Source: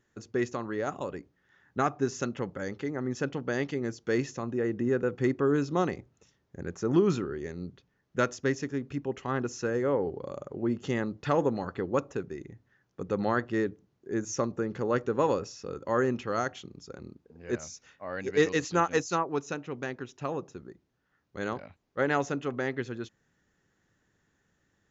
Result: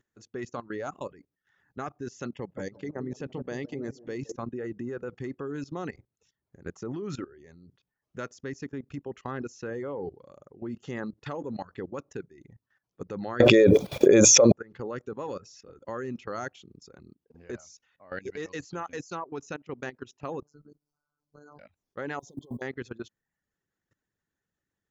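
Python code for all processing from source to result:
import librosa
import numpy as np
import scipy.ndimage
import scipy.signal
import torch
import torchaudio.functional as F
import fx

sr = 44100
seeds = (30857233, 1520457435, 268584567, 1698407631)

y = fx.chain(x, sr, fx.peak_eq(hz=1400.0, db=-7.0, octaves=0.55),
    fx.echo_wet_lowpass(ms=163, feedback_pct=58, hz=860.0, wet_db=-8), at=(2.34, 4.36))
y = fx.chain(y, sr, fx.high_shelf(hz=3900.0, db=9.0),
    fx.small_body(hz=(540.0, 2400.0, 3400.0), ring_ms=25, db=18),
    fx.env_flatten(amount_pct=100), at=(13.4, 14.52))
y = fx.chain(y, sr, fx.over_compress(threshold_db=-36.0, ratio=-0.5),
    fx.robotise(hz=147.0),
    fx.brickwall_bandstop(low_hz=1600.0, high_hz=4100.0), at=(20.42, 21.59))
y = fx.chain(y, sr, fx.over_compress(threshold_db=-35.0, ratio=-0.5),
    fx.quant_companded(bits=8),
    fx.brickwall_bandstop(low_hz=1100.0, high_hz=3100.0), at=(22.19, 22.62))
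y = fx.dereverb_blind(y, sr, rt60_s=0.55)
y = fx.level_steps(y, sr, step_db=18)
y = F.gain(torch.from_numpy(y), 2.0).numpy()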